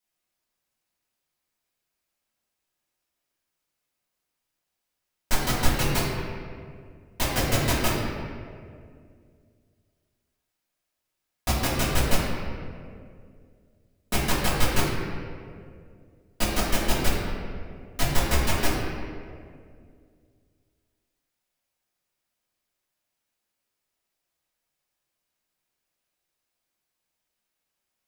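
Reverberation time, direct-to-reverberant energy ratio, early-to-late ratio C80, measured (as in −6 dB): 2.2 s, −8.5 dB, 2.0 dB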